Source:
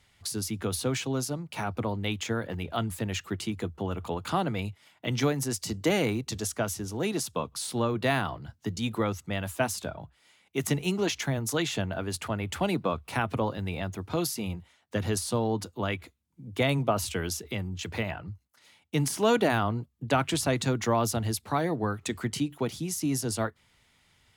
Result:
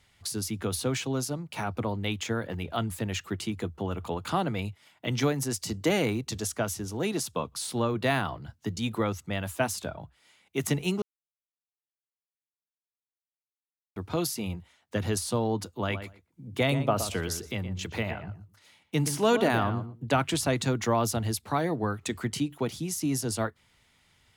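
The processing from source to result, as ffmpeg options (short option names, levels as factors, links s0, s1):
-filter_complex "[0:a]asettb=1/sr,asplit=3[s0][s1][s2];[s0]atrim=end=15.764[s3];[s1]atrim=start=15.76:end=20.2,asetpts=PTS-STARTPTS,afade=t=in:d=0.004:c=qsin,afade=t=out:st=4.436:d=0.004:c=qsin,asplit=2[s4][s5];[s5]adelay=119,lowpass=f=2000:p=1,volume=0.335,asplit=2[s6][s7];[s7]adelay=119,lowpass=f=2000:p=1,volume=0.16[s8];[s4][s6][s8]amix=inputs=3:normalize=0,atrim=end_sample=195804[s9];[s2]atrim=start=20.196[s10];[s3][s9]acrossfade=d=0.004:c1=hsin:c2=qsin[s11];[s11][s10]acrossfade=d=0.004:c1=qsin:c2=hsin,asplit=3[s12][s13][s14];[s12]atrim=end=11.02,asetpts=PTS-STARTPTS,afade=t=out:st=11.016:d=0.004:c=hsin[s15];[s13]atrim=start=11.02:end=13.96,asetpts=PTS-STARTPTS,volume=0[s16];[s14]atrim=start=13.96,asetpts=PTS-STARTPTS,afade=t=in:d=0.004:c=hsin[s17];[s15][s16][s17]concat=n=3:v=0:a=1"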